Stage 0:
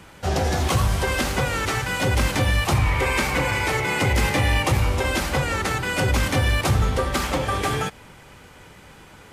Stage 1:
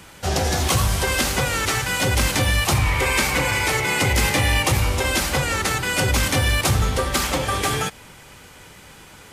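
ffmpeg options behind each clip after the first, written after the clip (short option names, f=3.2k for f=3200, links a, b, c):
-af "highshelf=f=3.1k:g=8.5"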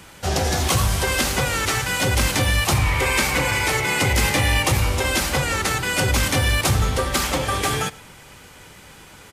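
-af "aecho=1:1:115:0.0708"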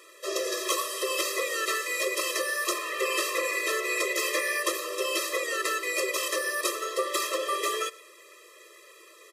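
-af "afftfilt=real='re*eq(mod(floor(b*sr/1024/340),2),1)':imag='im*eq(mod(floor(b*sr/1024/340),2),1)':win_size=1024:overlap=0.75,volume=-3.5dB"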